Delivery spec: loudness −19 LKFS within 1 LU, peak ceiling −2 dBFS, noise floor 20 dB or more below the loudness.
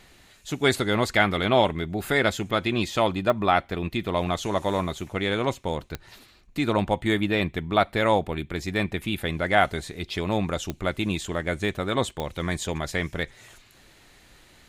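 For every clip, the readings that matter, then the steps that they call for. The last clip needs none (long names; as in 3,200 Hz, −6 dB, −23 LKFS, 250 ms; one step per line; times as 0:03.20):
number of clicks 4; integrated loudness −25.5 LKFS; sample peak −5.0 dBFS; target loudness −19.0 LKFS
→ click removal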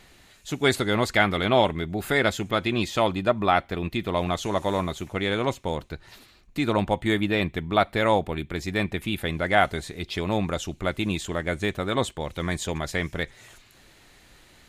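number of clicks 0; integrated loudness −25.5 LKFS; sample peak −5.0 dBFS; target loudness −19.0 LKFS
→ level +6.5 dB
brickwall limiter −2 dBFS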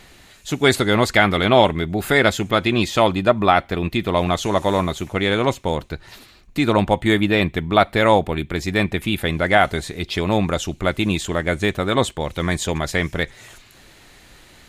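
integrated loudness −19.5 LKFS; sample peak −2.0 dBFS; background noise floor −49 dBFS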